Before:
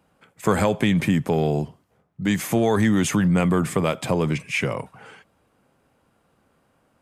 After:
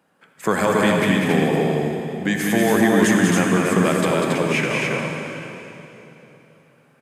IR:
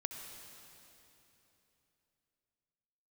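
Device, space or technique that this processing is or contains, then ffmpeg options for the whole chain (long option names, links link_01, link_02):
stadium PA: -filter_complex "[0:a]highpass=180,equalizer=frequency=1700:width_type=o:width=0.27:gain=7,aecho=1:1:195.3|277:0.631|0.708[link_01];[1:a]atrim=start_sample=2205[link_02];[link_01][link_02]afir=irnorm=-1:irlink=0,volume=2.5dB"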